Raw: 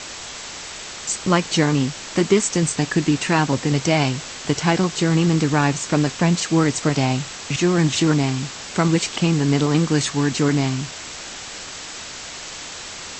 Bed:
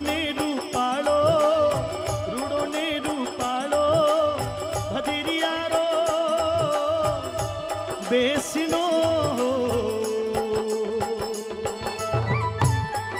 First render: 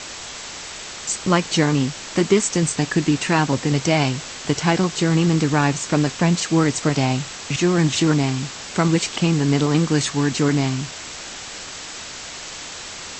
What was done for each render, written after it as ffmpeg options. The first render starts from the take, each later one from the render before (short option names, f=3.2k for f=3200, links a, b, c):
-af anull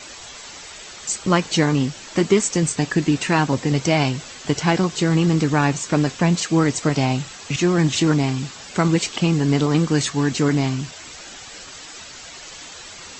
-af "afftdn=nr=9:nf=-35"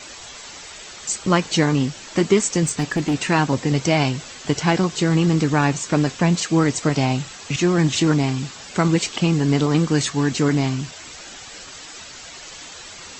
-filter_complex "[0:a]asplit=3[a][b][c];[a]afade=t=out:st=2.65:d=0.02[d];[b]volume=16dB,asoftclip=hard,volume=-16dB,afade=t=in:st=2.65:d=0.02,afade=t=out:st=3.13:d=0.02[e];[c]afade=t=in:st=3.13:d=0.02[f];[d][e][f]amix=inputs=3:normalize=0"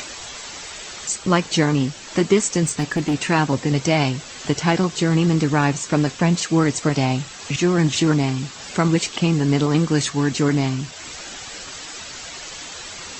-af "acompressor=mode=upward:threshold=-28dB:ratio=2.5"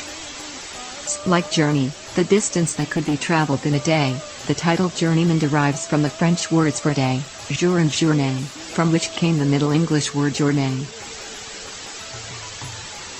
-filter_complex "[1:a]volume=-15.5dB[a];[0:a][a]amix=inputs=2:normalize=0"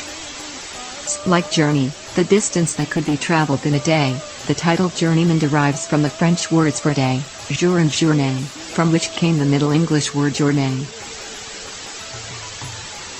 -af "volume=2dB"